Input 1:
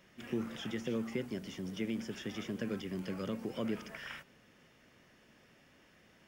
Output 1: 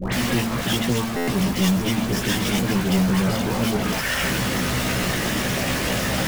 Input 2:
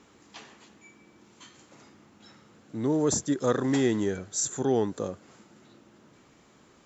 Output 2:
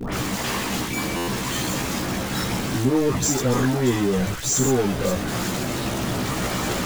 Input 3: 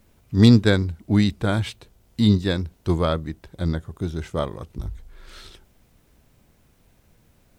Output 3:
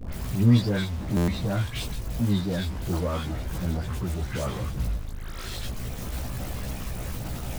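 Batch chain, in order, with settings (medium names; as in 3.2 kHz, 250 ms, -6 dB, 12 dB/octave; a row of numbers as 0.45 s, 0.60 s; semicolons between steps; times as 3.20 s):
jump at every zero crossing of -22 dBFS; phase dispersion highs, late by 124 ms, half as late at 1.4 kHz; in parallel at -11 dB: Schmitt trigger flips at -26 dBFS; on the sum: chorus voices 6, 0.62 Hz, delay 16 ms, depth 1 ms; buffer glitch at 1.16 s, samples 512, times 9; peak normalisation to -9 dBFS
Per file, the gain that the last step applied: +5.5 dB, +3.0 dB, -7.5 dB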